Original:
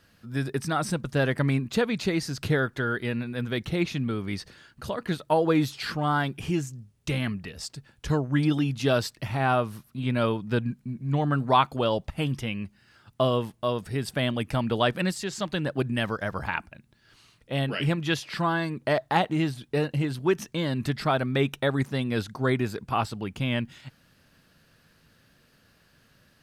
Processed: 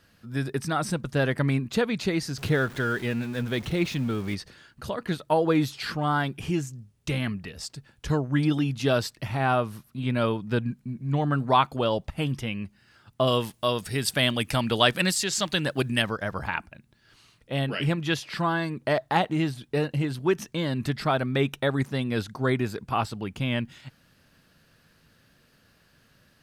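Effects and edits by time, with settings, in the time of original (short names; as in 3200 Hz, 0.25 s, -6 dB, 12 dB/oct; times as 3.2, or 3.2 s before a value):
2.38–4.35 zero-crossing step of -38.5 dBFS
13.27–16.02 high shelf 2000 Hz +11.5 dB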